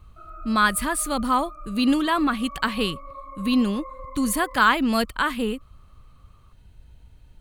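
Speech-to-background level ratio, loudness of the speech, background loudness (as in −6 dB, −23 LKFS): 18.0 dB, −23.0 LKFS, −41.0 LKFS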